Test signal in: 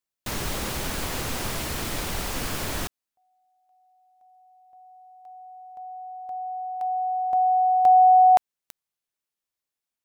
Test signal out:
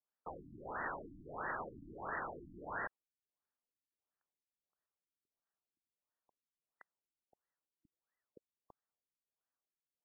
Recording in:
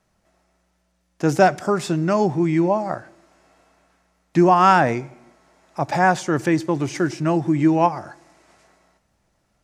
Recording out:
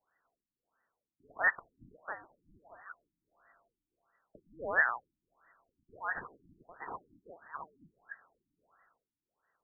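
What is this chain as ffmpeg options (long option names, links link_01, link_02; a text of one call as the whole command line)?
ffmpeg -i in.wav -af "lowpass=frequency=2800:width_type=q:width=0.5098,lowpass=frequency=2800:width_type=q:width=0.6013,lowpass=frequency=2800:width_type=q:width=0.9,lowpass=frequency=2800:width_type=q:width=2.563,afreqshift=-3300,afftfilt=real='re*lt(b*sr/1024,320*pow(2000/320,0.5+0.5*sin(2*PI*1.5*pts/sr)))':imag='im*lt(b*sr/1024,320*pow(2000/320,0.5+0.5*sin(2*PI*1.5*pts/sr)))':win_size=1024:overlap=0.75" out.wav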